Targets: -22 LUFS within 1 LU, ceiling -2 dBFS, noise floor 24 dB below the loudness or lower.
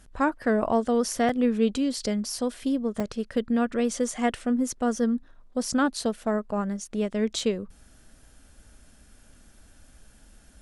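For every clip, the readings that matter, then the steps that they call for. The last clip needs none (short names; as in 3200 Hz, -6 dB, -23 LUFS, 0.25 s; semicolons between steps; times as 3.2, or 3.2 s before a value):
dropouts 3; longest dropout 3.2 ms; loudness -27.0 LUFS; peak -11.5 dBFS; loudness target -22.0 LUFS
-> interpolate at 1.29/3/7.39, 3.2 ms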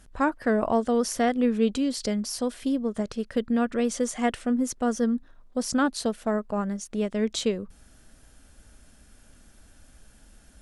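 dropouts 0; loudness -27.0 LUFS; peak -11.5 dBFS; loudness target -22.0 LUFS
-> gain +5 dB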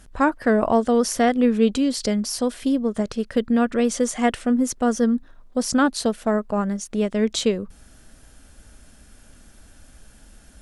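loudness -22.0 LUFS; peak -6.5 dBFS; noise floor -50 dBFS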